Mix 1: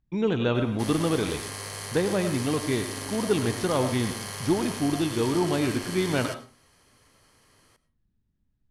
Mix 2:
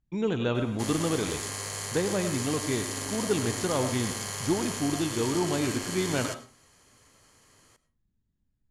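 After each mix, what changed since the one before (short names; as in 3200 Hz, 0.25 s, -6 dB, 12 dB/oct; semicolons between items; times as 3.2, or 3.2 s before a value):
speech -3.0 dB; master: add bell 7000 Hz +12 dB 0.21 oct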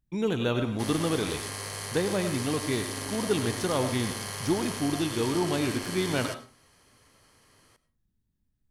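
speech: remove air absorption 140 m; master: add bell 7000 Hz -12 dB 0.21 oct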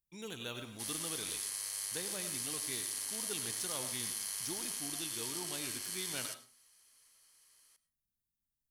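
background: add low shelf 320 Hz -11.5 dB; master: add pre-emphasis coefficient 0.9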